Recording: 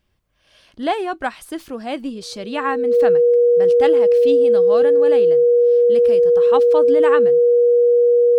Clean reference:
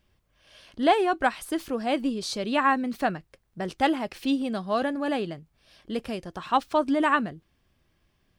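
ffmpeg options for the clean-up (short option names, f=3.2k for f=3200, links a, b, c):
-af "bandreject=f=480:w=30"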